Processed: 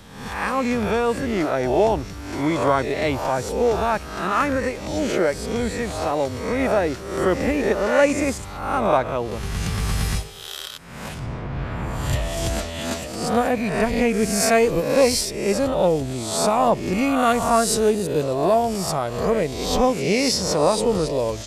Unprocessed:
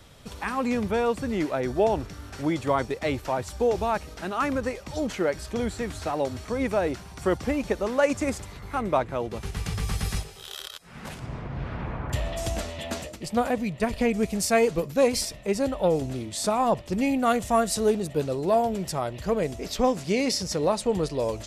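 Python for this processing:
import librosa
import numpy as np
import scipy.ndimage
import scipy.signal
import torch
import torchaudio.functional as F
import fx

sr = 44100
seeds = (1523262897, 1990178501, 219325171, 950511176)

y = fx.spec_swells(x, sr, rise_s=0.78)
y = y * librosa.db_to_amplitude(3.0)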